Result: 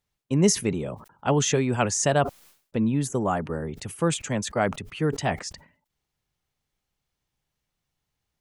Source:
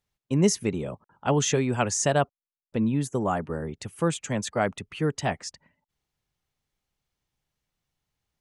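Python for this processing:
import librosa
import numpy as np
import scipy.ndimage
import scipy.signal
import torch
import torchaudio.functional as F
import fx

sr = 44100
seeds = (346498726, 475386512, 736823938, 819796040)

y = fx.sustainer(x, sr, db_per_s=130.0)
y = F.gain(torch.from_numpy(y), 1.0).numpy()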